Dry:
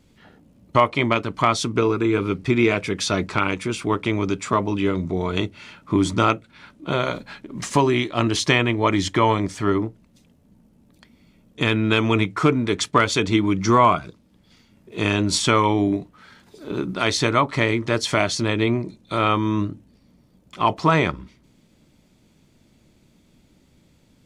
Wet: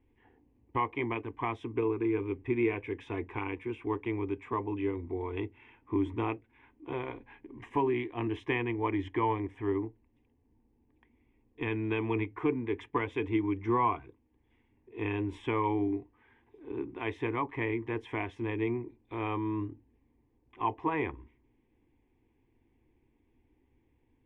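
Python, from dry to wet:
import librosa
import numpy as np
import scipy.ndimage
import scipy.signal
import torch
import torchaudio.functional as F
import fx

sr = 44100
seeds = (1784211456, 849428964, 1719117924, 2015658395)

y = fx.air_absorb(x, sr, metres=490.0)
y = fx.fixed_phaser(y, sr, hz=900.0, stages=8)
y = y * 10.0 ** (-7.5 / 20.0)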